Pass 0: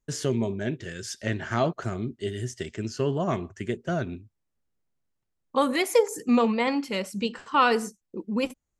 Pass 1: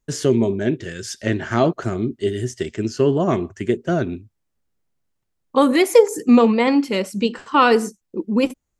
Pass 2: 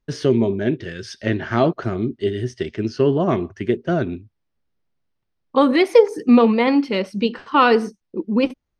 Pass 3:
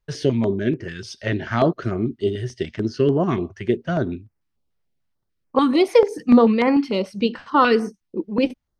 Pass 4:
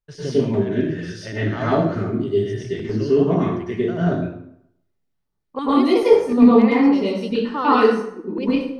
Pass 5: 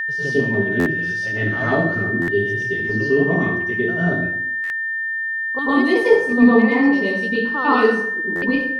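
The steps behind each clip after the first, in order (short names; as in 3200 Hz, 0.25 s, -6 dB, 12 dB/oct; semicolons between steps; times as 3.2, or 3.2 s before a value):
dynamic EQ 330 Hz, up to +7 dB, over -39 dBFS, Q 1.3; gain +5 dB
polynomial smoothing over 15 samples
stepped notch 6.8 Hz 270–3600 Hz
plate-style reverb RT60 0.73 s, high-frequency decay 0.7×, pre-delay 90 ms, DRR -9.5 dB; gain -10 dB
whine 1800 Hz -20 dBFS; stuck buffer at 0.79/2.21/4.63/8.35, samples 512, times 5; gain -1 dB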